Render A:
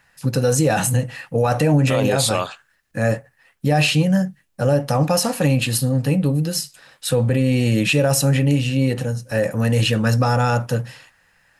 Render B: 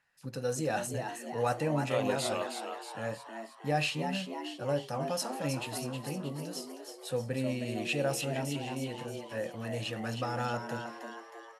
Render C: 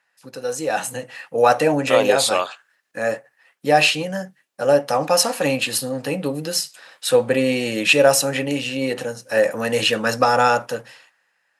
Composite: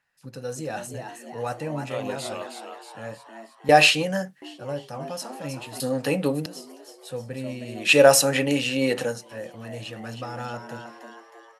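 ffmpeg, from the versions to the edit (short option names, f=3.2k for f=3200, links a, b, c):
-filter_complex "[2:a]asplit=3[a][b][c];[1:a]asplit=4[d][e][f][g];[d]atrim=end=3.692[h];[a]atrim=start=3.688:end=4.422[i];[e]atrim=start=4.418:end=5.802[j];[b]atrim=start=5.798:end=6.462[k];[f]atrim=start=6.458:end=7.96[l];[c]atrim=start=7.8:end=9.32[m];[g]atrim=start=9.16[n];[h][i]acrossfade=d=0.004:c1=hsin:c2=hsin[o];[o][j]acrossfade=d=0.004:c1=hsin:c2=hsin[p];[p][k]acrossfade=d=0.004:c1=hsin:c2=hsin[q];[q][l]acrossfade=d=0.004:c1=hsin:c2=hsin[r];[r][m]acrossfade=d=0.16:c1=tri:c2=tri[s];[s][n]acrossfade=d=0.16:c1=tri:c2=tri"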